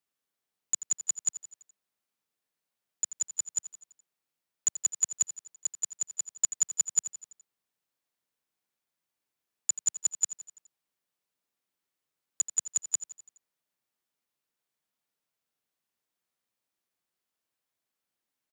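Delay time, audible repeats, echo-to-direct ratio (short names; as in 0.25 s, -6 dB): 84 ms, 4, -11.5 dB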